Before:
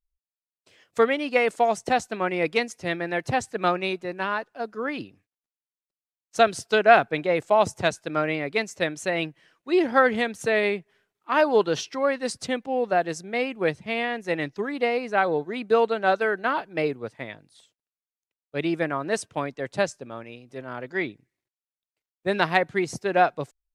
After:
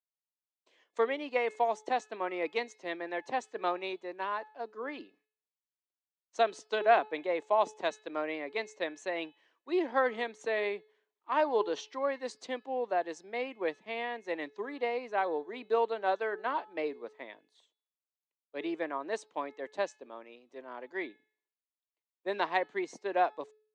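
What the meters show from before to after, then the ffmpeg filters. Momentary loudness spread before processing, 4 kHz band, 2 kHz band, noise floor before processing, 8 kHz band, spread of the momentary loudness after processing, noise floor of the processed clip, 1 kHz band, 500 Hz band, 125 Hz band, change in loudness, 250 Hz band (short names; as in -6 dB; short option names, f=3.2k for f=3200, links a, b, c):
12 LU, -10.5 dB, -11.0 dB, under -85 dBFS, -14.5 dB, 12 LU, under -85 dBFS, -7.5 dB, -8.5 dB, under -25 dB, -9.0 dB, -11.5 dB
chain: -af "highpass=f=280:w=0.5412,highpass=f=280:w=1.3066,equalizer=f=990:t=q:w=4:g=6,equalizer=f=1.4k:t=q:w=4:g=-6,equalizer=f=2.6k:t=q:w=4:g=-3,equalizer=f=5.1k:t=q:w=4:g=-8,lowpass=f=6.6k:w=0.5412,lowpass=f=6.6k:w=1.3066,bandreject=f=429.6:t=h:w=4,bandreject=f=859.2:t=h:w=4,bandreject=f=1.2888k:t=h:w=4,bandreject=f=1.7184k:t=h:w=4,bandreject=f=2.148k:t=h:w=4,bandreject=f=2.5776k:t=h:w=4,bandreject=f=3.0072k:t=h:w=4,bandreject=f=3.4368k:t=h:w=4,bandreject=f=3.8664k:t=h:w=4,bandreject=f=4.296k:t=h:w=4,bandreject=f=4.7256k:t=h:w=4,bandreject=f=5.1552k:t=h:w=4,volume=-8.5dB"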